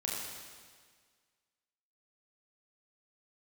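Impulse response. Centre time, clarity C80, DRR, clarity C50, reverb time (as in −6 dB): 103 ms, 1.0 dB, −4.5 dB, −0.5 dB, 1.7 s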